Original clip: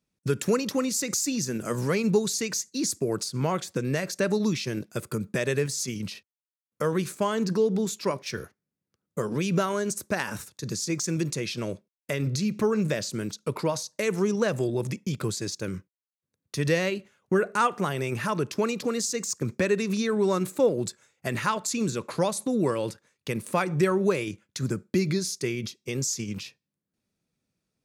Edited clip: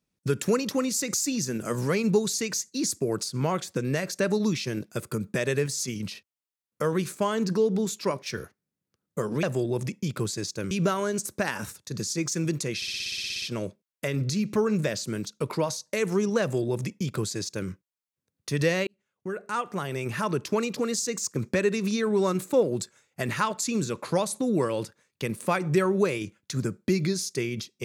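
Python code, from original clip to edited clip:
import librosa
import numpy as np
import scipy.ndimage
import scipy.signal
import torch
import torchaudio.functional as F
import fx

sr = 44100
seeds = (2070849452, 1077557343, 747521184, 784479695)

y = fx.edit(x, sr, fx.stutter(start_s=11.48, slice_s=0.06, count=12),
    fx.duplicate(start_s=14.47, length_s=1.28, to_s=9.43),
    fx.fade_in_span(start_s=16.93, length_s=1.41), tone=tone)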